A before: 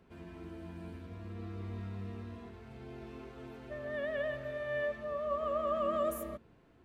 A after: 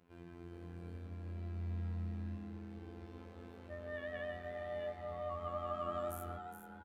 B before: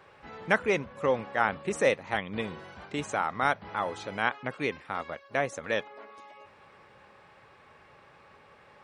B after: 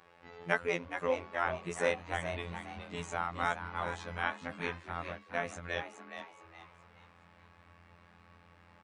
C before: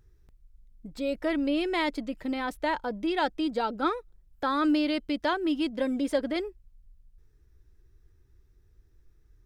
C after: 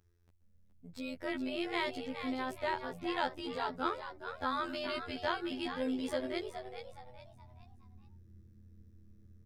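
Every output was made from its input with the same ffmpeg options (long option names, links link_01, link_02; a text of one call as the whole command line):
ffmpeg -i in.wav -filter_complex "[0:a]highpass=frequency=64:poles=1,asubboost=boost=8:cutoff=110,afftfilt=real='hypot(re,im)*cos(PI*b)':imag='0':win_size=2048:overlap=0.75,asplit=2[link_01][link_02];[link_02]asplit=4[link_03][link_04][link_05][link_06];[link_03]adelay=419,afreqshift=120,volume=-9dB[link_07];[link_04]adelay=838,afreqshift=240,volume=-18.1dB[link_08];[link_05]adelay=1257,afreqshift=360,volume=-27.2dB[link_09];[link_06]adelay=1676,afreqshift=480,volume=-36.4dB[link_10];[link_07][link_08][link_09][link_10]amix=inputs=4:normalize=0[link_11];[link_01][link_11]amix=inputs=2:normalize=0,volume=-2.5dB" out.wav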